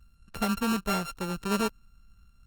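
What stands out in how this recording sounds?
a buzz of ramps at a fixed pitch in blocks of 32 samples
Opus

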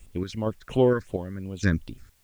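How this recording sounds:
sample-and-hold tremolo 4.3 Hz, depth 90%
phaser sweep stages 6, 2.8 Hz, lowest notch 720–1,800 Hz
a quantiser's noise floor 12 bits, dither triangular

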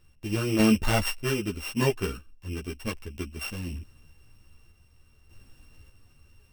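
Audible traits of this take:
a buzz of ramps at a fixed pitch in blocks of 16 samples
sample-and-hold tremolo 1.7 Hz, depth 55%
a shimmering, thickened sound

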